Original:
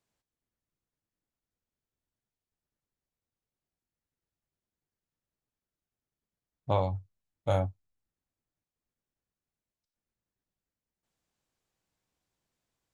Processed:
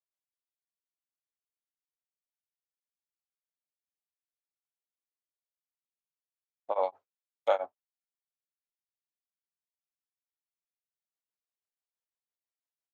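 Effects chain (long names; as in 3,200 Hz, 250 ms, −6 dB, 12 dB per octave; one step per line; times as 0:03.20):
treble cut that deepens with the level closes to 1,800 Hz, closed at −34.5 dBFS
high-pass filter 470 Hz 24 dB per octave
noise gate with hold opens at −56 dBFS
0:06.83–0:07.66: high-shelf EQ 2,500 Hz +11.5 dB
tremolo along a rectified sine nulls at 6 Hz
level +5 dB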